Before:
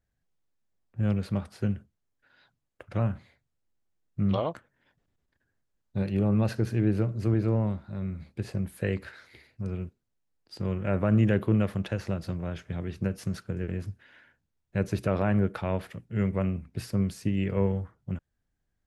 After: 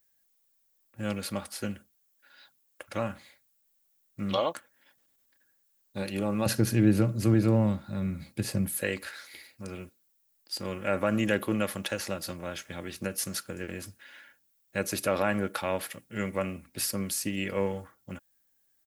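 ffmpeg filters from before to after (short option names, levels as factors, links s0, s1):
-filter_complex "[0:a]asettb=1/sr,asplit=3[s0][s1][s2];[s0]atrim=end=6.464[s3];[s1]atrim=start=6.46:end=8.81,asetpts=PTS-STARTPTS,afade=t=in:d=0.004:c=qsin,afade=t=out:st=2.346:d=0.004:c=qsin,equalizer=f=130:w=0.71:g=14[s4];[s2]atrim=start=8.806[s5];[s3][s4]acrossfade=d=0.004:c1=hsin:c2=qsin[s6];[s6][s5]acrossfade=d=0.004:c1=qsin:c2=hsin,aemphasis=mode=production:type=riaa,aecho=1:1:3.6:0.37,volume=1.33"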